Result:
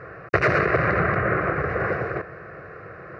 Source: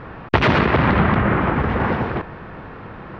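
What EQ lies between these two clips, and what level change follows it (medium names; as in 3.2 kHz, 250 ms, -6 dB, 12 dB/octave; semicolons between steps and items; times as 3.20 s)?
high-pass 120 Hz 12 dB/octave; static phaser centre 900 Hz, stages 6; 0.0 dB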